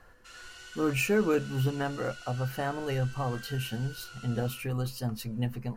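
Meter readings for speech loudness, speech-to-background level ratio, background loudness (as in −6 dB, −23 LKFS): −31.5 LKFS, 15.0 dB, −46.5 LKFS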